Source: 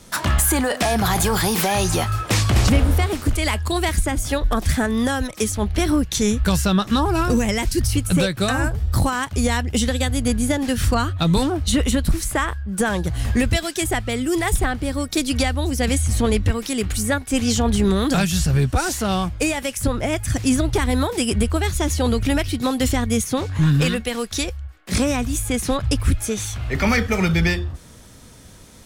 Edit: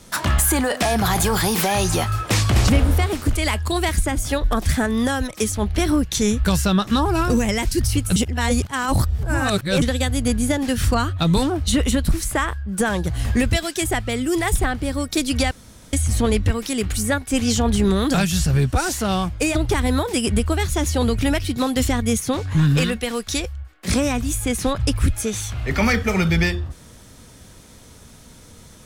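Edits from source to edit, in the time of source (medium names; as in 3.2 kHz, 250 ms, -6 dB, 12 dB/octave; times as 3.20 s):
8.16–9.82 s: reverse
15.51–15.93 s: room tone
19.55–20.59 s: delete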